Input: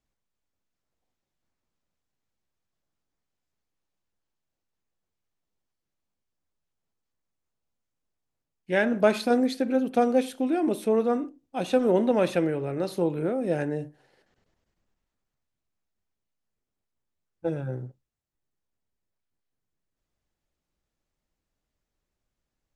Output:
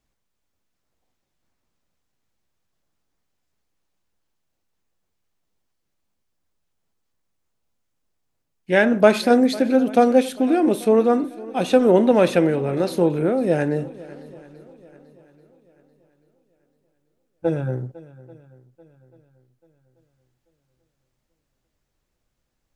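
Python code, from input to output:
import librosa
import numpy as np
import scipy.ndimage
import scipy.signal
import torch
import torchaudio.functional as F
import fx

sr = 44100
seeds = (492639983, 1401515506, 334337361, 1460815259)

y = fx.echo_swing(x, sr, ms=837, ratio=1.5, feedback_pct=34, wet_db=-20.0)
y = y * librosa.db_to_amplitude(7.0)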